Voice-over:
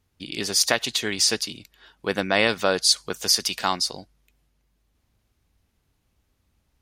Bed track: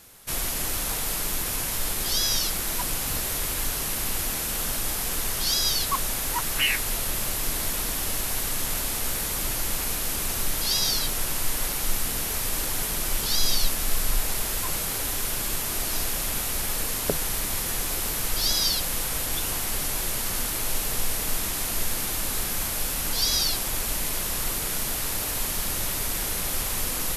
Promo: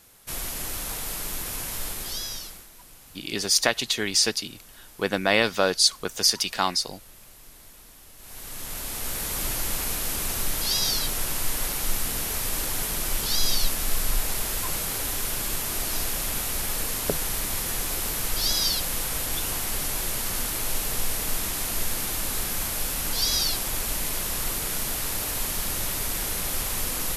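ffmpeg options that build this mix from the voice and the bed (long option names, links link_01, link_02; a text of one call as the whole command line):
ffmpeg -i stem1.wav -i stem2.wav -filter_complex "[0:a]adelay=2950,volume=-0.5dB[link_01];[1:a]volume=17dB,afade=type=out:start_time=1.82:duration=0.87:silence=0.133352,afade=type=in:start_time=8.17:duration=1.26:silence=0.0891251[link_02];[link_01][link_02]amix=inputs=2:normalize=0" out.wav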